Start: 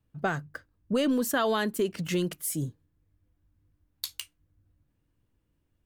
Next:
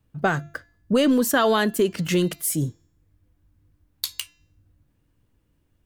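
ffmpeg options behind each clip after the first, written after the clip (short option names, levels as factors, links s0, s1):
-af "bandreject=f=341.2:t=h:w=4,bandreject=f=682.4:t=h:w=4,bandreject=f=1023.6:t=h:w=4,bandreject=f=1364.8:t=h:w=4,bandreject=f=1706:t=h:w=4,bandreject=f=2047.2:t=h:w=4,bandreject=f=2388.4:t=h:w=4,bandreject=f=2729.6:t=h:w=4,bandreject=f=3070.8:t=h:w=4,bandreject=f=3412:t=h:w=4,bandreject=f=3753.2:t=h:w=4,bandreject=f=4094.4:t=h:w=4,bandreject=f=4435.6:t=h:w=4,bandreject=f=4776.8:t=h:w=4,bandreject=f=5118:t=h:w=4,bandreject=f=5459.2:t=h:w=4,bandreject=f=5800.4:t=h:w=4,bandreject=f=6141.6:t=h:w=4,bandreject=f=6482.8:t=h:w=4,bandreject=f=6824:t=h:w=4,bandreject=f=7165.2:t=h:w=4,bandreject=f=7506.4:t=h:w=4,volume=2.24"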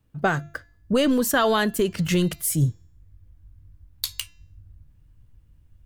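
-af "asubboost=boost=7:cutoff=120"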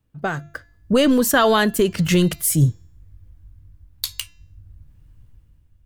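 -af "dynaudnorm=f=110:g=11:m=2.82,volume=0.708"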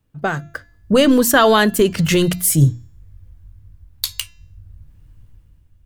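-af "bandreject=f=60:t=h:w=6,bandreject=f=120:t=h:w=6,bandreject=f=180:t=h:w=6,bandreject=f=240:t=h:w=6,bandreject=f=300:t=h:w=6,volume=1.5"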